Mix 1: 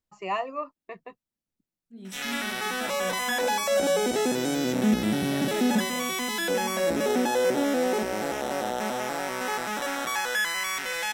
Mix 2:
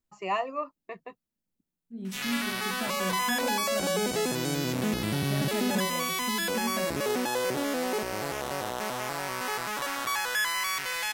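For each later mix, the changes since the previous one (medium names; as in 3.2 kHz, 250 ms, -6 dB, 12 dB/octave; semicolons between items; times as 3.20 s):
second voice: add tilt EQ -2.5 dB/octave; background: send off; master: add treble shelf 10 kHz +5 dB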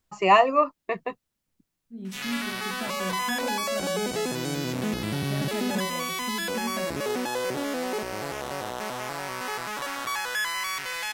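first voice +12.0 dB; master: add treble shelf 10 kHz -5 dB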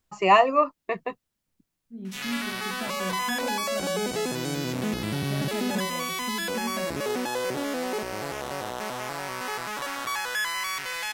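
second voice: add distance through air 190 m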